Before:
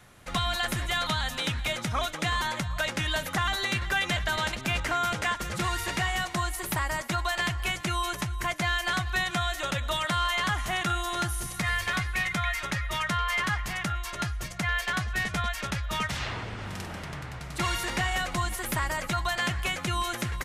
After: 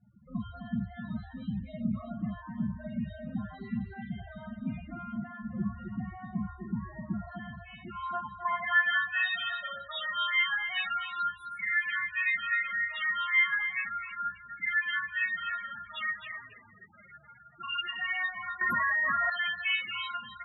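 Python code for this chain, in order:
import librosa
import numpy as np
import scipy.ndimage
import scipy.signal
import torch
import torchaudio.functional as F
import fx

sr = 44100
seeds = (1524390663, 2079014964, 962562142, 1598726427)

p1 = fx.rider(x, sr, range_db=4, speed_s=0.5)
p2 = x + (p1 * 10.0 ** (-2.0 / 20.0))
p3 = fx.rev_schroeder(p2, sr, rt60_s=0.59, comb_ms=27, drr_db=-2.5)
p4 = fx.spec_topn(p3, sr, count=8)
p5 = fx.filter_sweep_bandpass(p4, sr, from_hz=210.0, to_hz=2400.0, start_s=7.13, end_s=9.13, q=2.8)
p6 = p5 + fx.echo_single(p5, sr, ms=260, db=-9.5, dry=0)
p7 = fx.env_flatten(p6, sr, amount_pct=100, at=(18.61, 19.3))
y = p7 * 10.0 ** (-1.5 / 20.0)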